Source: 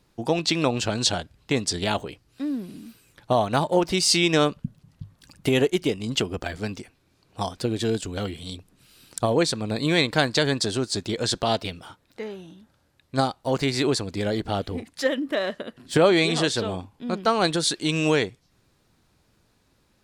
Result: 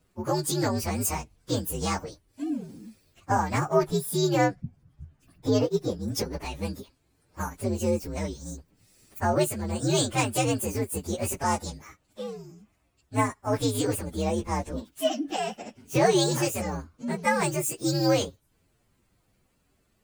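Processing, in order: inharmonic rescaling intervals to 125%; 3.83–6.08 high shelf 3300 Hz -9 dB

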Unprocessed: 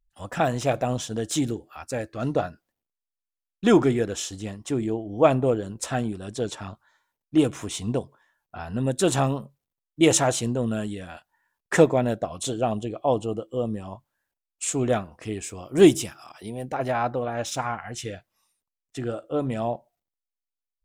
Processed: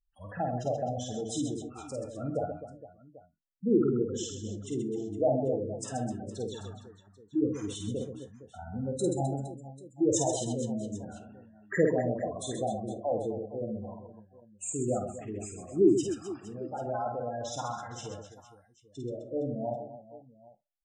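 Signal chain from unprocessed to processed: spectral gate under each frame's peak -10 dB strong; reverse bouncing-ball echo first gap 50 ms, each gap 1.6×, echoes 5; non-linear reverb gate 90 ms falling, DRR 9 dB; gain -8 dB

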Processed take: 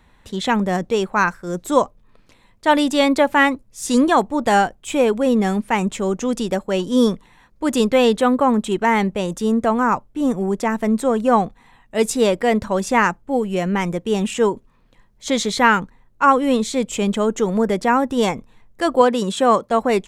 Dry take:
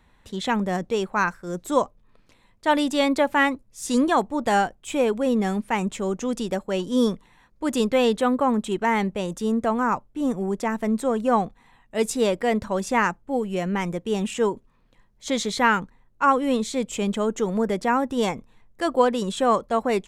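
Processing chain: 19.01–19.71 HPF 100 Hz; gain +5 dB

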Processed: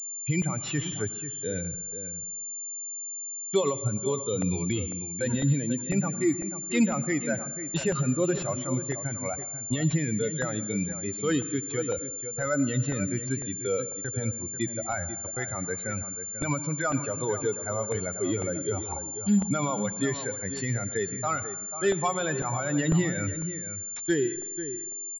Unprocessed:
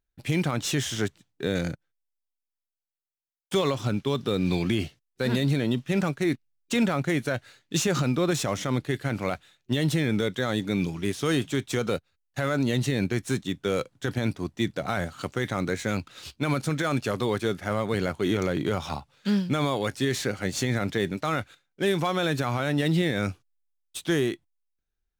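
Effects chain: per-bin expansion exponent 2; gate -48 dBFS, range -15 dB; reverse; upward compressor, threshold -38 dBFS; reverse; outdoor echo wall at 84 m, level -11 dB; on a send at -14.5 dB: reverb RT60 1.0 s, pre-delay 82 ms; on the sum: crackling interface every 0.50 s, samples 64, repeat, from 0.42; pulse-width modulation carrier 7200 Hz; gain +3.5 dB

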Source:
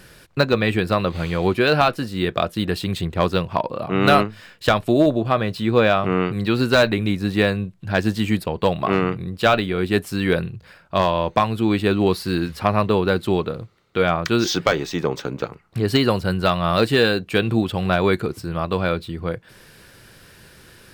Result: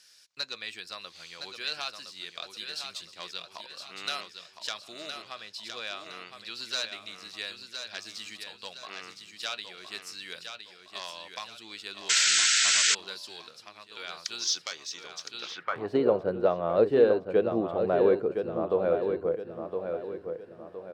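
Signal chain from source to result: feedback echo 1.014 s, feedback 39%, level -7 dB; band-pass sweep 5600 Hz -> 500 Hz, 15.28–15.97; painted sound noise, 12.09–12.95, 1300–8200 Hz -23 dBFS

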